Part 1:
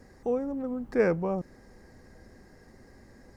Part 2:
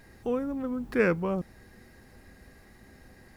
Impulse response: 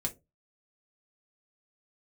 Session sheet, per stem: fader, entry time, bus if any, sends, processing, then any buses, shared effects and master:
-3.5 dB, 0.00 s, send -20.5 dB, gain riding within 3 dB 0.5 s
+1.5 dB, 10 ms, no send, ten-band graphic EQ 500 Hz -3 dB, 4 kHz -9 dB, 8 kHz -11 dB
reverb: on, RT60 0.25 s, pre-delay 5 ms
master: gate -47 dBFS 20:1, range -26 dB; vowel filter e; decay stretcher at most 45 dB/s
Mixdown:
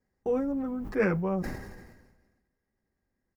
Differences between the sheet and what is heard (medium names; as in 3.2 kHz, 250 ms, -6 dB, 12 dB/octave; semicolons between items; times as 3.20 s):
stem 2 +1.5 dB -> -4.5 dB; master: missing vowel filter e